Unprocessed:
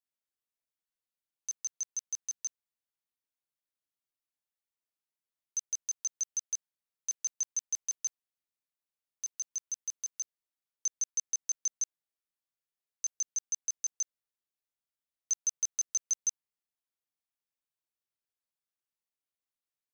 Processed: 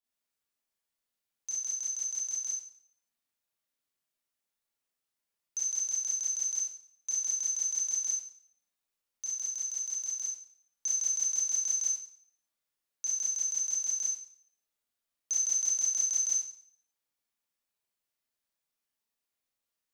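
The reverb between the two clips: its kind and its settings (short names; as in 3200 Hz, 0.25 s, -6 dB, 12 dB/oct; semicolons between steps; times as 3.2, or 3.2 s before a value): Schroeder reverb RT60 0.56 s, combs from 27 ms, DRR -7 dB; gain -2 dB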